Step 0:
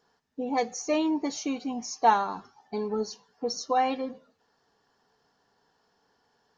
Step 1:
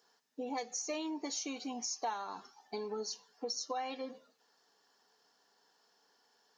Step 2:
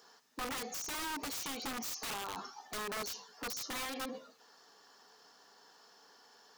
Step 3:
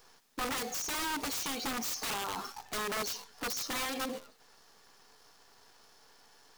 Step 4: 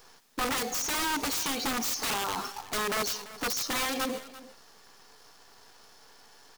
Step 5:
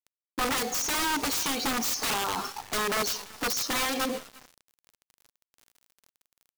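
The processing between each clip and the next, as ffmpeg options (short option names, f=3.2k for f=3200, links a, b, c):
-af "highpass=270,highshelf=f=3.1k:g=11,acompressor=threshold=-32dB:ratio=4,volume=-4.5dB"
-af "aeval=exprs='(mod(59.6*val(0)+1,2)-1)/59.6':c=same,alimiter=level_in=20.5dB:limit=-24dB:level=0:latency=1:release=22,volume=-20.5dB,equalizer=f=1.2k:t=o:w=0.3:g=4.5,volume=9.5dB"
-af "acrusher=bits=9:dc=4:mix=0:aa=0.000001,volume=4.5dB"
-af "aecho=1:1:340:0.141,volume=5dB"
-af "aeval=exprs='val(0)*gte(abs(val(0)),0.0075)':c=same,volume=2dB"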